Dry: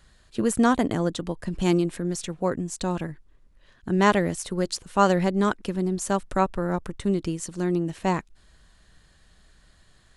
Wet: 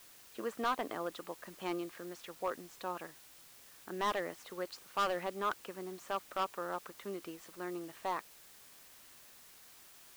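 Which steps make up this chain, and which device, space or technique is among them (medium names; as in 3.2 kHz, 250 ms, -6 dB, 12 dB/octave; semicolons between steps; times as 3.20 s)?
drive-through speaker (band-pass 520–2800 Hz; peaking EQ 1.2 kHz +6 dB 0.28 oct; hard clipper -19.5 dBFS, distortion -7 dB; white noise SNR 17 dB); trim -8 dB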